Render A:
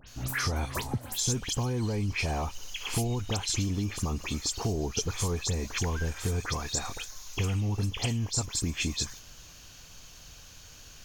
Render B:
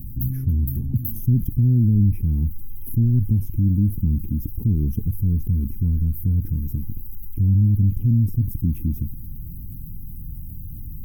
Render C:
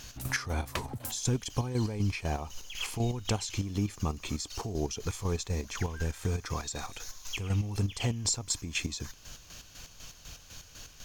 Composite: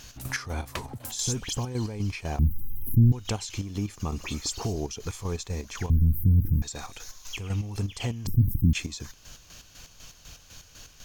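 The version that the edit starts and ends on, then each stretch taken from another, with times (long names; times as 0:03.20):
C
0:01.19–0:01.65: punch in from A
0:02.39–0:03.12: punch in from B
0:04.12–0:04.76: punch in from A
0:05.90–0:06.62: punch in from B
0:08.27–0:08.73: punch in from B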